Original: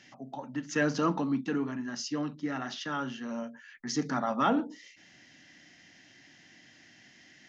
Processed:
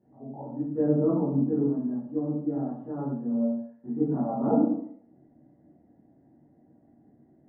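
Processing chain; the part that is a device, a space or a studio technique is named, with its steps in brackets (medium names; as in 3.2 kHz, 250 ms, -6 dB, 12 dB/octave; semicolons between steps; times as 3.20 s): next room (low-pass 670 Hz 24 dB/octave; reverberation RT60 0.65 s, pre-delay 14 ms, DRR -10 dB); trim -5.5 dB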